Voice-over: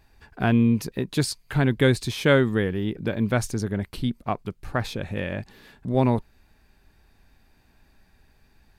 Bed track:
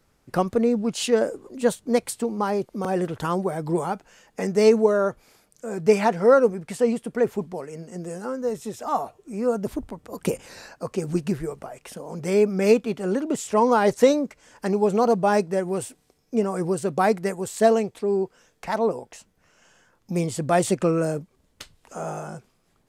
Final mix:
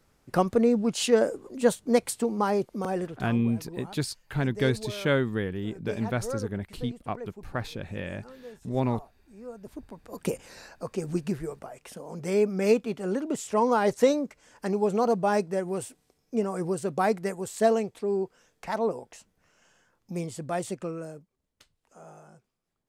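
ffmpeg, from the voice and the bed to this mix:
ffmpeg -i stem1.wav -i stem2.wav -filter_complex "[0:a]adelay=2800,volume=-6dB[link_01];[1:a]volume=13dB,afade=type=out:start_time=2.64:duration=0.69:silence=0.133352,afade=type=in:start_time=9.6:duration=0.56:silence=0.199526,afade=type=out:start_time=19.36:duration=1.9:silence=0.223872[link_02];[link_01][link_02]amix=inputs=2:normalize=0" out.wav

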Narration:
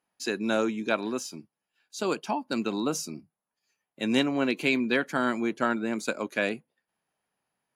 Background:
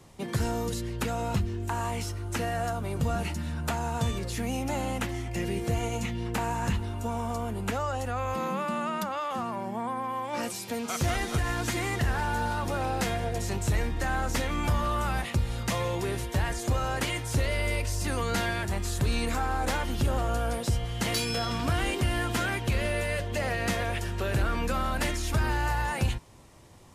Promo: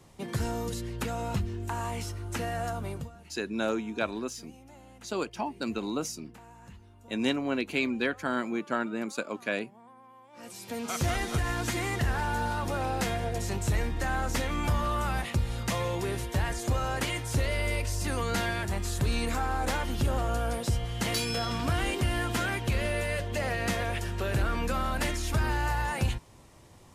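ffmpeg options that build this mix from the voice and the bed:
ffmpeg -i stem1.wav -i stem2.wav -filter_complex "[0:a]adelay=3100,volume=-3.5dB[link_01];[1:a]volume=18dB,afade=type=out:start_time=2.88:duration=0.22:silence=0.112202,afade=type=in:start_time=10.35:duration=0.53:silence=0.0944061[link_02];[link_01][link_02]amix=inputs=2:normalize=0" out.wav

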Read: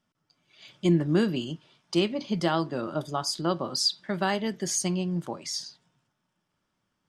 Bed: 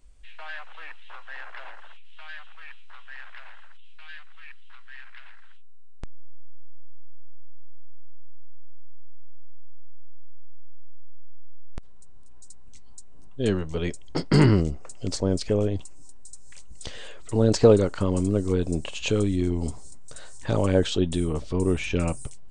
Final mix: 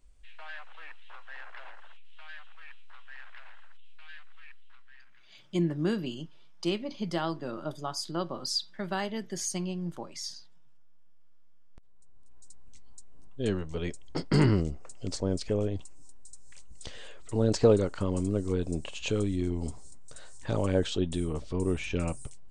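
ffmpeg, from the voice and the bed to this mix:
ffmpeg -i stem1.wav -i stem2.wav -filter_complex "[0:a]adelay=4700,volume=-5.5dB[link_01];[1:a]volume=12dB,afade=type=out:start_time=4.36:duration=0.94:silence=0.133352,afade=type=in:start_time=11.68:duration=0.88:silence=0.133352[link_02];[link_01][link_02]amix=inputs=2:normalize=0" out.wav

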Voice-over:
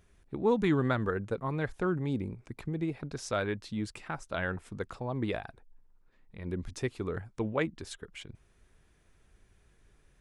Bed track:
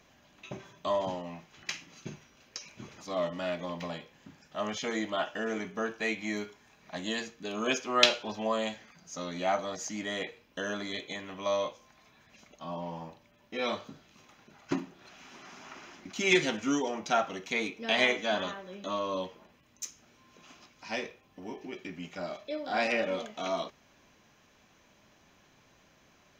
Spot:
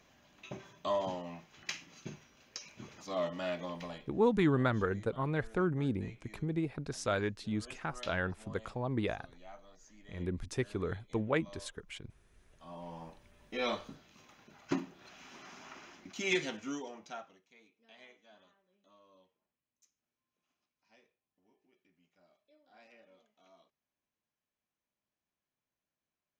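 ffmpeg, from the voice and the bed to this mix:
ffmpeg -i stem1.wav -i stem2.wav -filter_complex "[0:a]adelay=3750,volume=-1dB[link_01];[1:a]volume=18.5dB,afade=type=out:start_time=3.61:duration=0.86:silence=0.0944061,afade=type=in:start_time=12.41:duration=0.95:silence=0.0841395,afade=type=out:start_time=15.41:duration=2.02:silence=0.0334965[link_02];[link_01][link_02]amix=inputs=2:normalize=0" out.wav

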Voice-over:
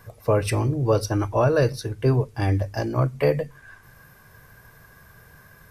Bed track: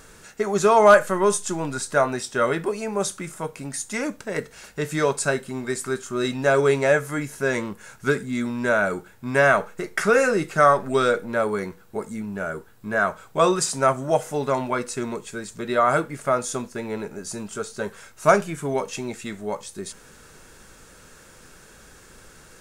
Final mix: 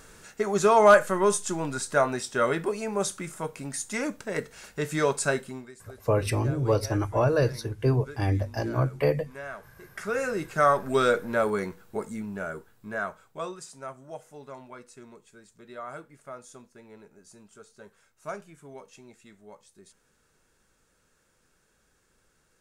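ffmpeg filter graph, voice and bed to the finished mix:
ffmpeg -i stem1.wav -i stem2.wav -filter_complex "[0:a]adelay=5800,volume=-3.5dB[link_01];[1:a]volume=17dB,afade=type=out:start_time=5.4:duration=0.31:silence=0.112202,afade=type=in:start_time=9.78:duration=1.32:silence=0.1,afade=type=out:start_time=11.85:duration=1.71:silence=0.125893[link_02];[link_01][link_02]amix=inputs=2:normalize=0" out.wav

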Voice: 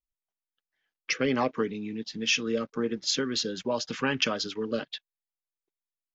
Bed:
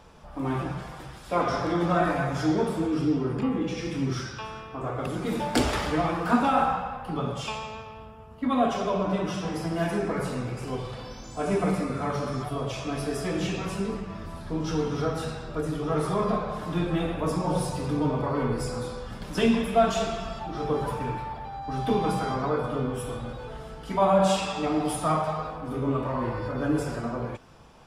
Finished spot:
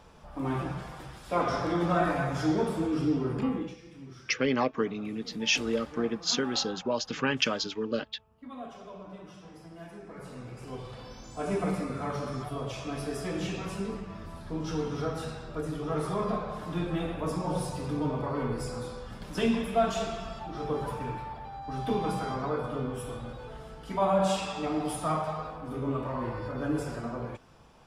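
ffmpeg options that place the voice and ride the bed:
ffmpeg -i stem1.wav -i stem2.wav -filter_complex "[0:a]adelay=3200,volume=-0.5dB[link_01];[1:a]volume=11.5dB,afade=type=out:start_time=3.49:duration=0.29:silence=0.158489,afade=type=in:start_time=10.06:duration=1.16:silence=0.199526[link_02];[link_01][link_02]amix=inputs=2:normalize=0" out.wav

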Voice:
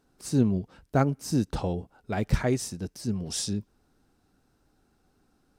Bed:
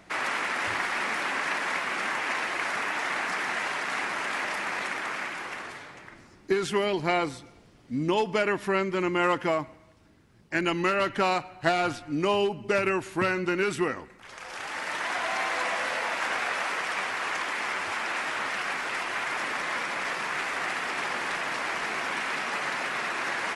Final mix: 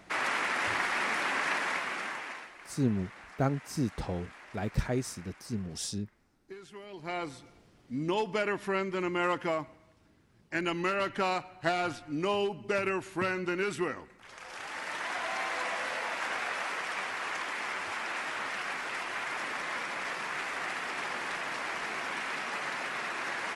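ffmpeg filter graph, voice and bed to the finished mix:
ffmpeg -i stem1.wav -i stem2.wav -filter_complex "[0:a]adelay=2450,volume=-5.5dB[link_01];[1:a]volume=14.5dB,afade=type=out:start_time=1.55:duration=0.97:silence=0.105925,afade=type=in:start_time=6.88:duration=0.58:silence=0.158489[link_02];[link_01][link_02]amix=inputs=2:normalize=0" out.wav

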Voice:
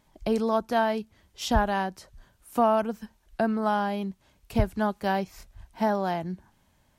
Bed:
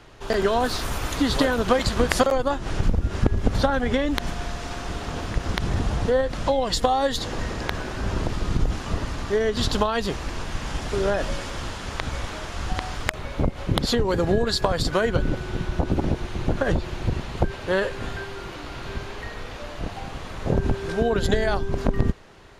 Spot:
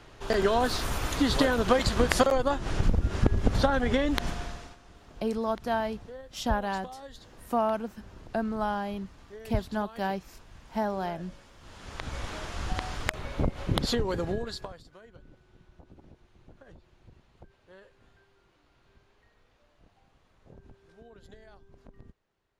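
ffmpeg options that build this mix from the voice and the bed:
ffmpeg -i stem1.wav -i stem2.wav -filter_complex "[0:a]adelay=4950,volume=-4.5dB[link_01];[1:a]volume=15.5dB,afade=type=out:start_time=4.26:duration=0.51:silence=0.1,afade=type=in:start_time=11.6:duration=0.75:silence=0.11885,afade=type=out:start_time=13.82:duration=1:silence=0.0501187[link_02];[link_01][link_02]amix=inputs=2:normalize=0" out.wav

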